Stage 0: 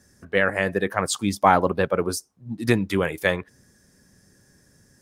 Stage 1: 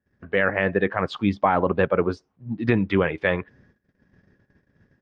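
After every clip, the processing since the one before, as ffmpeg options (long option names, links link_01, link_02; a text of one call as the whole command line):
ffmpeg -i in.wav -af "lowpass=frequency=3100:width=0.5412,lowpass=frequency=3100:width=1.3066,agate=range=-23dB:threshold=-57dB:ratio=16:detection=peak,alimiter=level_in=9.5dB:limit=-1dB:release=50:level=0:latency=1,volume=-7dB" out.wav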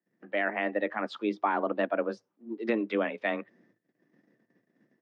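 ffmpeg -i in.wav -af "afreqshift=110,volume=-8dB" out.wav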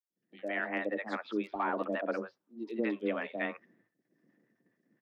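ffmpeg -i in.wav -filter_complex "[0:a]dynaudnorm=framelen=110:gausssize=5:maxgain=5dB,aeval=exprs='clip(val(0),-1,0.251)':channel_layout=same,acrossover=split=680|3900[link_01][link_02][link_03];[link_01]adelay=100[link_04];[link_02]adelay=160[link_05];[link_04][link_05][link_03]amix=inputs=3:normalize=0,volume=-8dB" out.wav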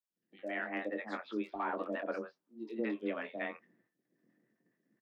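ffmpeg -i in.wav -filter_complex "[0:a]asplit=2[link_01][link_02];[link_02]adelay=23,volume=-8dB[link_03];[link_01][link_03]amix=inputs=2:normalize=0,volume=-4.5dB" out.wav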